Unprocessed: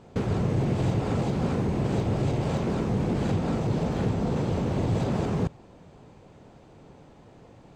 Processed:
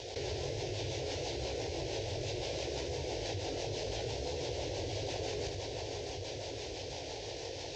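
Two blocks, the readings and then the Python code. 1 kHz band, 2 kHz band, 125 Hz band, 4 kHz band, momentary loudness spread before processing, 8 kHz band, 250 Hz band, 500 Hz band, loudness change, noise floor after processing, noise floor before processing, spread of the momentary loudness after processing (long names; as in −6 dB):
−9.5 dB, −4.0 dB, −15.5 dB, +5.5 dB, 2 LU, +4.5 dB, −18.0 dB, −6.0 dB, −11.5 dB, −43 dBFS, −52 dBFS, 4 LU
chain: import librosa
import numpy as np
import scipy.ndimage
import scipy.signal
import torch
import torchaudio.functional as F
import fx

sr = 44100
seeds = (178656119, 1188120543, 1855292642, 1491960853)

y = fx.cvsd(x, sr, bps=32000)
y = fx.chorus_voices(y, sr, voices=2, hz=0.69, base_ms=18, depth_ms=4.1, mix_pct=35)
y = fx.peak_eq(y, sr, hz=180.0, db=-15.0, octaves=1.1)
y = fx.echo_feedback(y, sr, ms=626, feedback_pct=49, wet_db=-16.0)
y = fx.rotary(y, sr, hz=6.0)
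y = scipy.signal.sosfilt(scipy.signal.butter(2, 65.0, 'highpass', fs=sr, output='sos'), y)
y = fx.high_shelf(y, sr, hz=2300.0, db=11.5)
y = fx.rider(y, sr, range_db=10, speed_s=0.5)
y = fx.fixed_phaser(y, sr, hz=510.0, stages=4)
y = y + 10.0 ** (-12.5 / 20.0) * np.pad(y, (int(77 * sr / 1000.0), 0))[:len(y)]
y = fx.env_flatten(y, sr, amount_pct=70)
y = y * 10.0 ** (-2.5 / 20.0)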